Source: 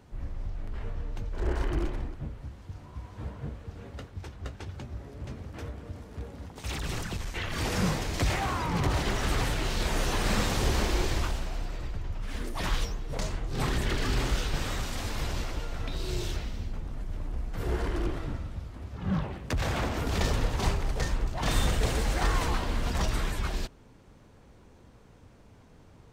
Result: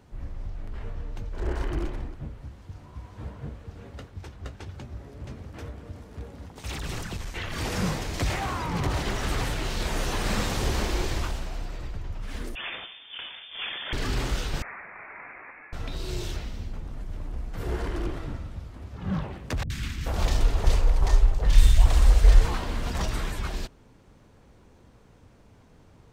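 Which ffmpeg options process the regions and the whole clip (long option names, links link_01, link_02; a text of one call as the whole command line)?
ffmpeg -i in.wav -filter_complex "[0:a]asettb=1/sr,asplit=3[link_01][link_02][link_03];[link_01]atrim=end=12.554[link_04];[link_02]atrim=start=12.55:end=13.93,asetpts=PTS-STARTPTS,afade=type=in:duration=0.004:curve=qsin,afade=type=out:start_time=1.376:duration=0.004:curve=qsin,highpass=frequency=350:poles=1,lowpass=frequency=3100:width_type=q:width=0.5098,lowpass=frequency=3100:width_type=q:width=0.6013,lowpass=frequency=3100:width_type=q:width=0.9,lowpass=frequency=3100:width_type=q:width=2.563,afreqshift=-3600[link_05];[link_03]atrim=start=13.926[link_06];[link_04][link_05]acrossfade=duration=0.004:curve1=hsin:curve2=qsin[link_07];[link_07][link_06]acrossfade=duration=0.004:curve1=qsin:curve2=hsin,asettb=1/sr,asplit=3[link_08][link_09][link_10];[link_08]atrim=end=14.624[link_11];[link_09]atrim=start=14.62:end=15.73,asetpts=PTS-STARTPTS,afade=type=in:duration=0.004:curve=qsin,afade=type=out:start_time=1.106:duration=0.004:curve=qsin,highpass=frequency=850:width=0.5412,highpass=frequency=850:width=1.3066,lowpass=frequency=2600:width_type=q:width=0.5098,lowpass=frequency=2600:width_type=q:width=0.6013,lowpass=frequency=2600:width_type=q:width=0.9,lowpass=frequency=2600:width_type=q:width=2.563,afreqshift=-3100[link_12];[link_10]atrim=start=15.726[link_13];[link_11][link_12]acrossfade=duration=0.004:curve1=hsin:curve2=qsin[link_14];[link_14][link_13]acrossfade=duration=0.004:curve1=qsin:curve2=hsin,asettb=1/sr,asplit=3[link_15][link_16][link_17];[link_15]atrim=end=19.634[link_18];[link_16]atrim=start=19.63:end=22.45,asetpts=PTS-STARTPTS,afade=type=in:duration=0.004:curve=qsin,afade=type=out:start_time=2.816:duration=0.004:curve=qsin,asubboost=boost=9:cutoff=66,acrossover=split=250|1600[link_19][link_20][link_21];[link_21]adelay=70[link_22];[link_20]adelay=430[link_23];[link_19][link_23][link_22]amix=inputs=3:normalize=0,atrim=end_sample=124362[link_24];[link_17]atrim=start=22.446[link_25];[link_18][link_24]acrossfade=duration=0.004:curve1=hsin:curve2=qsin[link_26];[link_26][link_25]acrossfade=duration=0.004:curve1=qsin:curve2=hsin" out.wav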